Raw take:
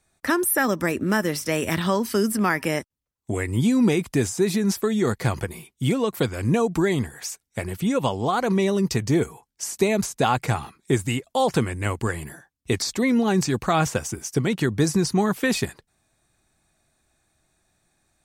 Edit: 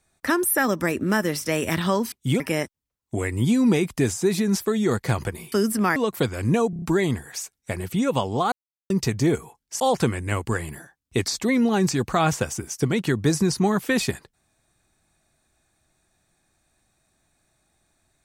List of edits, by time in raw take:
0:02.12–0:02.56: swap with 0:05.68–0:05.96
0:06.70: stutter 0.03 s, 5 plays
0:08.40–0:08.78: silence
0:09.68–0:11.34: remove

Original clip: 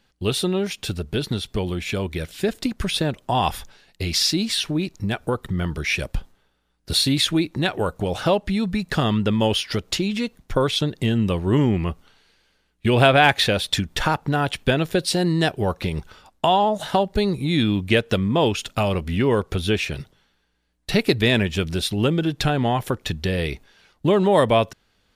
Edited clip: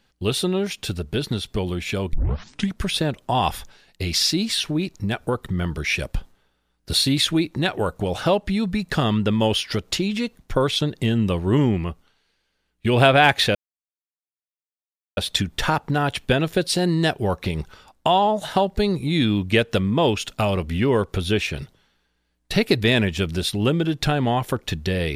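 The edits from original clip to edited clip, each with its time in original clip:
0:02.13: tape start 0.67 s
0:11.67–0:12.99: duck −8.5 dB, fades 0.47 s
0:13.55: splice in silence 1.62 s

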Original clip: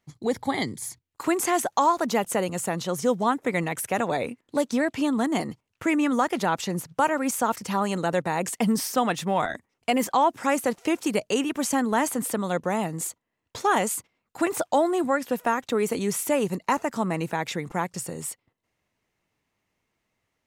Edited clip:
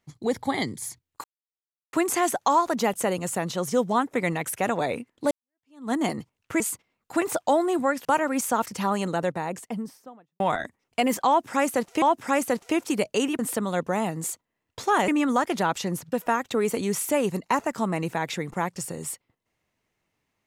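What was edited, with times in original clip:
0:01.24: splice in silence 0.69 s
0:04.62–0:05.23: fade in exponential
0:05.91–0:06.95: swap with 0:13.85–0:15.30
0:07.78–0:09.30: fade out and dull
0:10.18–0:10.92: repeat, 2 plays
0:11.55–0:12.16: remove

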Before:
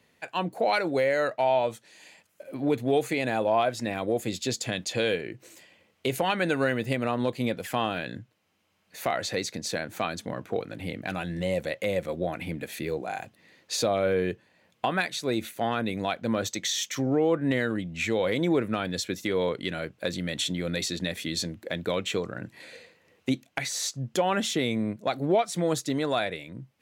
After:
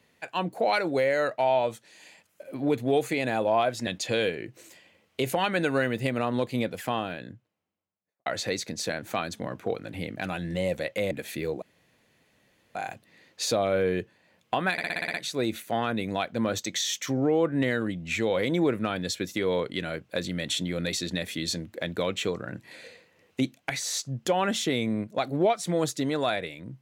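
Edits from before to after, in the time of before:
0:03.87–0:04.73: remove
0:07.42–0:09.12: fade out and dull
0:11.97–0:12.55: remove
0:13.06: splice in room tone 1.13 s
0:15.03: stutter 0.06 s, 8 plays

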